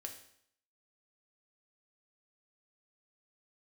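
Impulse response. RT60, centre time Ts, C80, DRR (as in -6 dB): 0.65 s, 17 ms, 11.5 dB, 3.0 dB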